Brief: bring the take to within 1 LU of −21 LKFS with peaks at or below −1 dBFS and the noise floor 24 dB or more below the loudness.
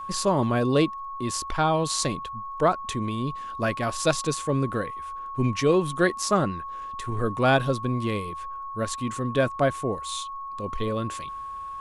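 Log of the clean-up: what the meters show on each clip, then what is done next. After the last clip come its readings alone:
crackle rate 22 per second; interfering tone 1,100 Hz; level of the tone −33 dBFS; integrated loudness −26.5 LKFS; sample peak −8.0 dBFS; target loudness −21.0 LKFS
→ click removal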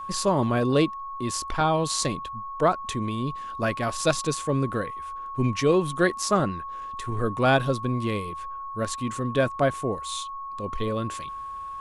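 crackle rate 0 per second; interfering tone 1,100 Hz; level of the tone −33 dBFS
→ notch filter 1,100 Hz, Q 30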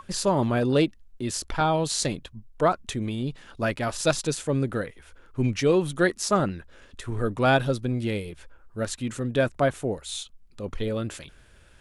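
interfering tone none found; integrated loudness −26.5 LKFS; sample peak −8.5 dBFS; target loudness −21.0 LKFS
→ level +5.5 dB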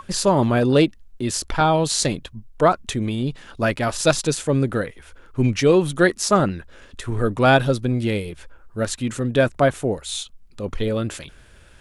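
integrated loudness −21.0 LKFS; sample peak −3.0 dBFS; background noise floor −48 dBFS

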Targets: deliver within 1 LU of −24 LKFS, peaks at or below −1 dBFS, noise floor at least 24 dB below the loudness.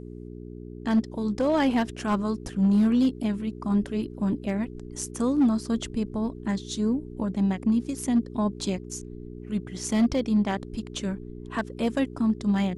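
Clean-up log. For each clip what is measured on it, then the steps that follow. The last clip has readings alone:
share of clipped samples 0.6%; peaks flattened at −16.0 dBFS; mains hum 60 Hz; hum harmonics up to 420 Hz; level of the hum −38 dBFS; integrated loudness −26.5 LKFS; sample peak −16.0 dBFS; target loudness −24.0 LKFS
→ clipped peaks rebuilt −16 dBFS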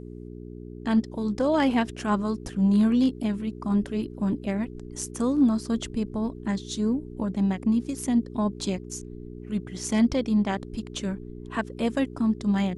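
share of clipped samples 0.0%; mains hum 60 Hz; hum harmonics up to 420 Hz; level of the hum −38 dBFS
→ hum removal 60 Hz, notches 7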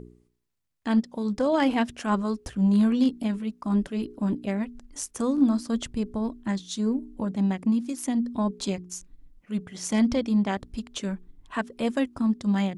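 mains hum none found; integrated loudness −27.0 LKFS; sample peak −11.0 dBFS; target loudness −24.0 LKFS
→ level +3 dB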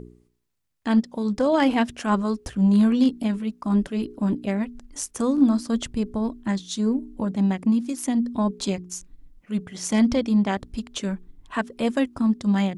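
integrated loudness −24.0 LKFS; sample peak −8.0 dBFS; background noise floor −62 dBFS

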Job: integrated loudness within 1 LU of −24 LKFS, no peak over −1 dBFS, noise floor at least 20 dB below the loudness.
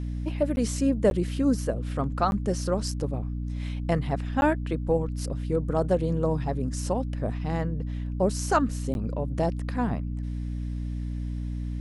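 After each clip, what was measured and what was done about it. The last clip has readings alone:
number of dropouts 5; longest dropout 11 ms; mains hum 60 Hz; hum harmonics up to 300 Hz; level of the hum −28 dBFS; integrated loudness −28.0 LKFS; sample peak −9.0 dBFS; target loudness −24.0 LKFS
→ repair the gap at 0:00.56/0:01.10/0:02.31/0:04.41/0:08.94, 11 ms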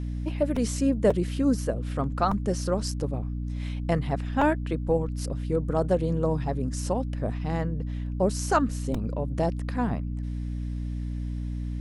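number of dropouts 0; mains hum 60 Hz; hum harmonics up to 300 Hz; level of the hum −28 dBFS
→ hum removal 60 Hz, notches 5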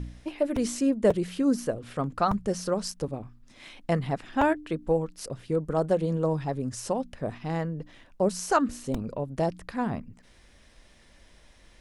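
mains hum none found; integrated loudness −28.5 LKFS; sample peak −10.0 dBFS; target loudness −24.0 LKFS
→ level +4.5 dB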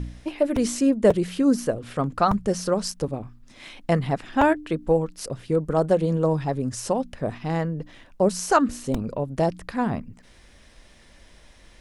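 integrated loudness −24.0 LKFS; sample peak −5.5 dBFS; background noise floor −52 dBFS

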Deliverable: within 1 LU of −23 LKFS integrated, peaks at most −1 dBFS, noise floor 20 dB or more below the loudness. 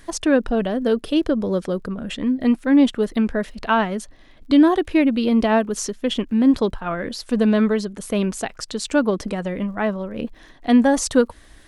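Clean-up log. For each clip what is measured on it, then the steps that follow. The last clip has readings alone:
crackle rate 39 per second; integrated loudness −20.5 LKFS; sample peak −3.5 dBFS; target loudness −23.0 LKFS
→ click removal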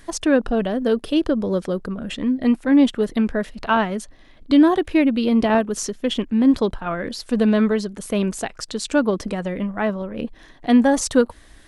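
crackle rate 0.17 per second; integrated loudness −20.5 LKFS; sample peak −3.5 dBFS; target loudness −23.0 LKFS
→ level −2.5 dB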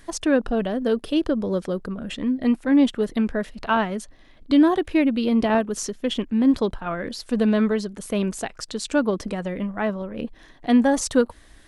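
integrated loudness −23.0 LKFS; sample peak −6.0 dBFS; background noise floor −50 dBFS

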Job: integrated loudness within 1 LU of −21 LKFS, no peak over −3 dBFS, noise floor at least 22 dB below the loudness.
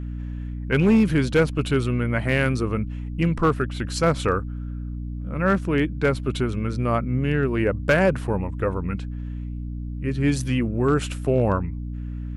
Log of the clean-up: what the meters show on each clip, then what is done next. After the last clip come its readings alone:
share of clipped samples 0.4%; peaks flattened at −11.5 dBFS; mains hum 60 Hz; hum harmonics up to 300 Hz; level of the hum −28 dBFS; integrated loudness −23.5 LKFS; sample peak −11.5 dBFS; target loudness −21.0 LKFS
→ clipped peaks rebuilt −11.5 dBFS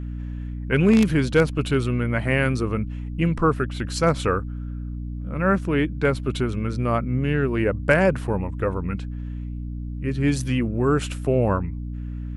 share of clipped samples 0.0%; mains hum 60 Hz; hum harmonics up to 300 Hz; level of the hum −28 dBFS
→ mains-hum notches 60/120/180/240/300 Hz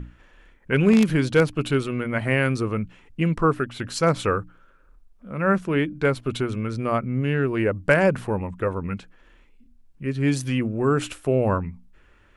mains hum none found; integrated loudness −23.5 LKFS; sample peak −3.5 dBFS; target loudness −21.0 LKFS
→ level +2.5 dB
brickwall limiter −3 dBFS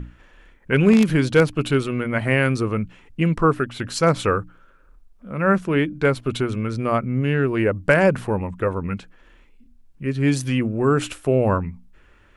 integrated loudness −21.0 LKFS; sample peak −3.0 dBFS; background noise floor −53 dBFS

